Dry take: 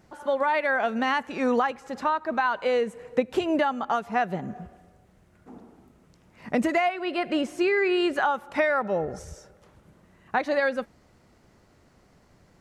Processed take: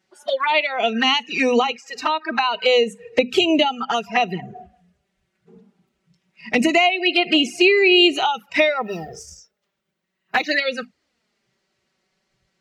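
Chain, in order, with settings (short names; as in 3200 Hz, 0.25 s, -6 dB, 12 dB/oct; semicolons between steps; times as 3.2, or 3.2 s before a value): 8.82–10.51 G.711 law mismatch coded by A; notches 50/100/150/200/250 Hz; spectral noise reduction 19 dB; weighting filter D; envelope flanger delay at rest 5.3 ms, full sweep at -21 dBFS; gain +8.5 dB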